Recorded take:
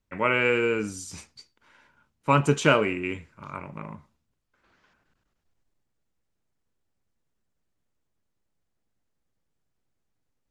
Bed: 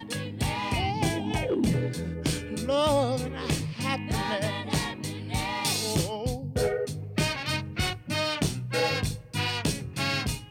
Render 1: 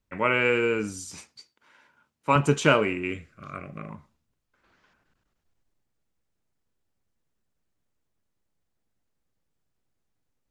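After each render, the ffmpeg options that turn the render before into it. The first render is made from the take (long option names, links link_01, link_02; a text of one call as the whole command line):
ffmpeg -i in.wav -filter_complex "[0:a]asettb=1/sr,asplit=3[link_01][link_02][link_03];[link_01]atrim=end=1.114[link_04];[link_02]atrim=start=1.11:end=2.36,asetpts=PTS-STARTPTS,afade=type=in:duration=0.004:curve=qsin,afade=type=out:start_time=1.246:duration=0.004:curve=qsin,highpass=frequency=220:poles=1[link_05];[link_03]atrim=start=2.356[link_06];[link_04][link_05]acrossfade=duration=0.004:curve1=hsin:curve2=qsin[link_07];[link_07][link_06]acrossfade=duration=0.004:curve1=qsin:curve2=hsin,asettb=1/sr,asplit=3[link_08][link_09][link_10];[link_08]atrim=end=3.104[link_11];[link_09]atrim=start=3.1:end=3.9,asetpts=PTS-STARTPTS,afade=type=in:duration=0.004:curve=qsin,afade=type=out:start_time=0.796:duration=0.004:curve=qsin,asuperstop=centerf=920:order=8:qfactor=3.5[link_12];[link_10]atrim=start=3.896[link_13];[link_11][link_12]acrossfade=duration=0.004:curve1=hsin:curve2=qsin[link_14];[link_14][link_13]acrossfade=duration=0.004:curve1=qsin:curve2=hsin" out.wav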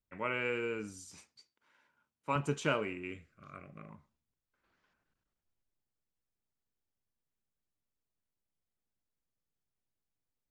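ffmpeg -i in.wav -af "volume=-12dB" out.wav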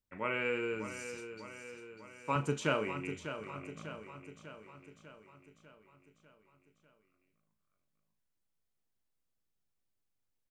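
ffmpeg -i in.wav -filter_complex "[0:a]asplit=2[link_01][link_02];[link_02]adelay=37,volume=-11.5dB[link_03];[link_01][link_03]amix=inputs=2:normalize=0,aecho=1:1:597|1194|1791|2388|2985|3582|4179:0.316|0.183|0.106|0.0617|0.0358|0.0208|0.012" out.wav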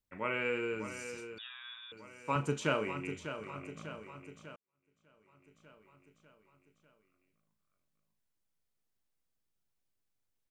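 ffmpeg -i in.wav -filter_complex "[0:a]asettb=1/sr,asplit=3[link_01][link_02][link_03];[link_01]atrim=end=1.384[link_04];[link_02]atrim=start=1.38:end=1.92,asetpts=PTS-STARTPTS,afade=type=in:duration=0.004:curve=qsin,afade=type=out:start_time=0.536:duration=0.004:curve=qsin,lowpass=frequency=3300:width_type=q:width=0.5098,lowpass=frequency=3300:width_type=q:width=0.6013,lowpass=frequency=3300:width_type=q:width=0.9,lowpass=frequency=3300:width_type=q:width=2.563,afreqshift=-3900[link_05];[link_03]atrim=start=1.916[link_06];[link_04][link_05]acrossfade=duration=0.004:curve1=hsin:curve2=qsin[link_07];[link_07][link_06]acrossfade=duration=0.004:curve1=qsin:curve2=hsin,asplit=2[link_08][link_09];[link_08]atrim=end=4.56,asetpts=PTS-STARTPTS,afade=type=out:start_time=4.556:duration=0.004:curve=hsin[link_10];[link_09]atrim=start=4.56,asetpts=PTS-STARTPTS,afade=type=in:duration=1.14:curve=qua[link_11];[link_10][link_11]concat=n=2:v=0:a=1" out.wav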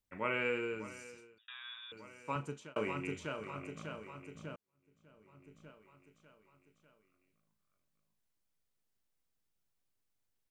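ffmpeg -i in.wav -filter_complex "[0:a]asettb=1/sr,asplit=3[link_01][link_02][link_03];[link_01]atrim=end=4.354[link_04];[link_02]atrim=start=4.35:end=5.71,asetpts=PTS-STARTPTS,afade=type=in:duration=0.004:curve=qsin,afade=type=out:start_time=1.356:duration=0.004:curve=qsin,lowshelf=frequency=490:gain=8[link_05];[link_03]atrim=start=5.706[link_06];[link_04][link_05]acrossfade=duration=0.004:curve1=hsin:curve2=qsin[link_07];[link_07][link_06]acrossfade=duration=0.004:curve1=qsin:curve2=hsin,asplit=3[link_08][link_09][link_10];[link_08]atrim=end=1.48,asetpts=PTS-STARTPTS,afade=type=out:start_time=0.43:duration=1.05[link_11];[link_09]atrim=start=1.48:end=2.76,asetpts=PTS-STARTPTS,afade=type=in:duration=0.004:curve=hsin,afade=type=out:start_time=0.51:duration=0.77[link_12];[link_10]atrim=start=2.76,asetpts=PTS-STARTPTS,afade=type=in:duration=0.004:curve=hsin[link_13];[link_11][link_12][link_13]concat=n=3:v=0:a=1" out.wav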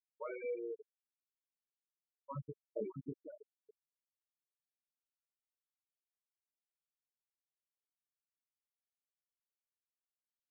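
ffmpeg -i in.wav -af "afftfilt=real='re*gte(hypot(re,im),0.0708)':imag='im*gte(hypot(re,im),0.0708)':win_size=1024:overlap=0.75,equalizer=frequency=2300:width_type=o:width=2.3:gain=-13" out.wav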